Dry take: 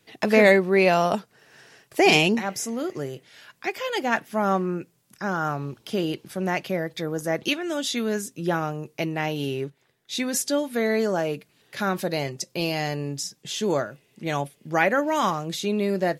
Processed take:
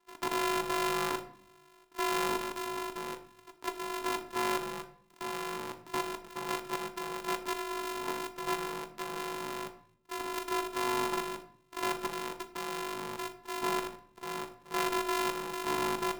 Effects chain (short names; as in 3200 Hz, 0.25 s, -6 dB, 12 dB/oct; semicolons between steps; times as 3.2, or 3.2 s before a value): sample sorter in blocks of 128 samples; level quantiser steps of 12 dB; resonant low shelf 460 Hz -9.5 dB, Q 3; limiter -19.5 dBFS, peak gain reduction 8.5 dB; ring modulator 320 Hz; shoebox room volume 100 m³, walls mixed, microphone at 0.34 m; gain +1 dB